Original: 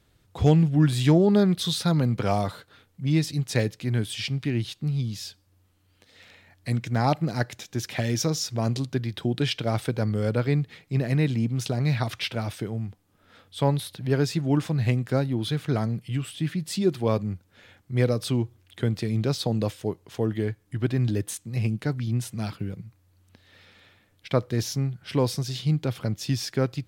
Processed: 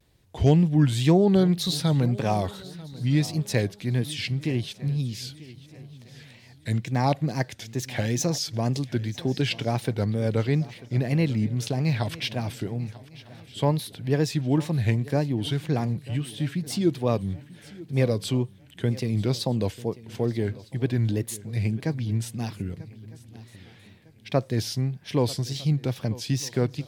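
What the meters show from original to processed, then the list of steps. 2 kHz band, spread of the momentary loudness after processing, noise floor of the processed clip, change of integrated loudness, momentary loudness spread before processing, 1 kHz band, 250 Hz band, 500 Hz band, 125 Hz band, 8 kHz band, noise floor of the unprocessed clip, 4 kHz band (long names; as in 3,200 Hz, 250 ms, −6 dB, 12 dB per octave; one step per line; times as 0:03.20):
−0.5 dB, 12 LU, −52 dBFS, 0.0 dB, 9 LU, 0.0 dB, 0.0 dB, 0.0 dB, 0.0 dB, +0.5 dB, −64 dBFS, 0.0 dB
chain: parametric band 1,300 Hz −10 dB 0.22 octaves
tape wow and flutter 140 cents
feedback echo with a long and a short gap by turns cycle 1,255 ms, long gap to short 3 to 1, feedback 32%, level −19 dB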